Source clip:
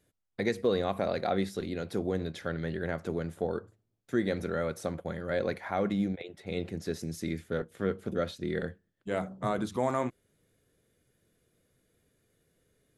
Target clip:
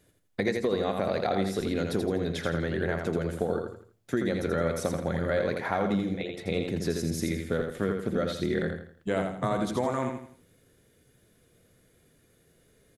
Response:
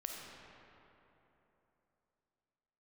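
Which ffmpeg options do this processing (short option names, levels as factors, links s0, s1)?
-filter_complex "[0:a]acompressor=threshold=0.0251:ratio=6,asplit=2[s0][s1];[s1]aecho=0:1:83|166|249|332:0.562|0.202|0.0729|0.0262[s2];[s0][s2]amix=inputs=2:normalize=0,volume=2.37"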